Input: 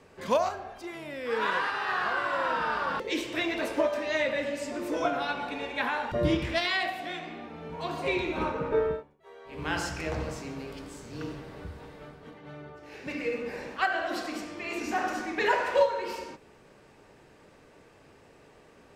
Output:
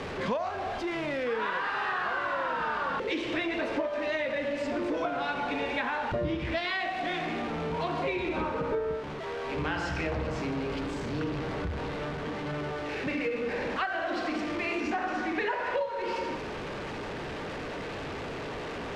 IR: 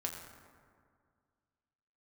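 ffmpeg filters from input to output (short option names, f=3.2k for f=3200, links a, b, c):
-af "aeval=exprs='val(0)+0.5*0.0168*sgn(val(0))':c=same,lowpass=3.5k,acompressor=threshold=-32dB:ratio=6,volume=4dB"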